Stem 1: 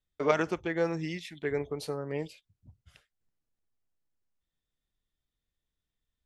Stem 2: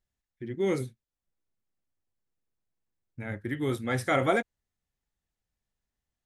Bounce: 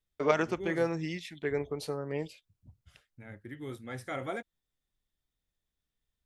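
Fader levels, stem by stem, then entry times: -0.5, -11.5 dB; 0.00, 0.00 s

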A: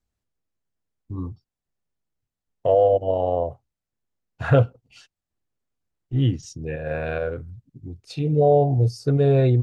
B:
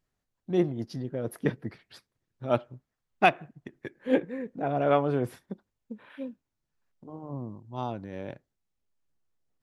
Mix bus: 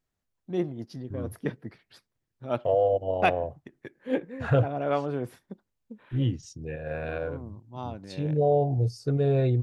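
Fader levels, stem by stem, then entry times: -6.0, -3.5 dB; 0.00, 0.00 s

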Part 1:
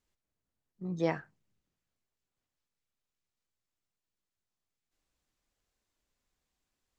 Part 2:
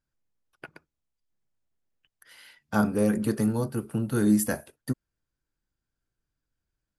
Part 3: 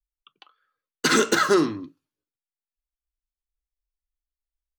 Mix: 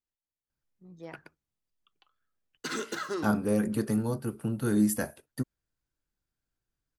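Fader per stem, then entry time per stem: -14.5, -3.0, -15.0 dB; 0.00, 0.50, 1.60 s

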